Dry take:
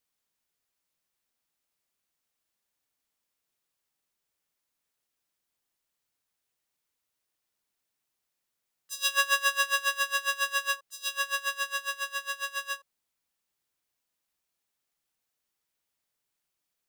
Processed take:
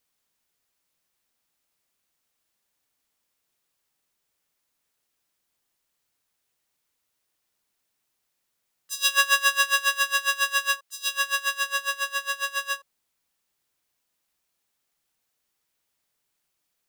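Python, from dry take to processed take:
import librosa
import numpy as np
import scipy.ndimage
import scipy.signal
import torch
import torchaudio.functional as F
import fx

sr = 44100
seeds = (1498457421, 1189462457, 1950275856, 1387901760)

y = fx.low_shelf(x, sr, hz=460.0, db=-10.5, at=(8.92, 11.66))
y = F.gain(torch.from_numpy(y), 5.5).numpy()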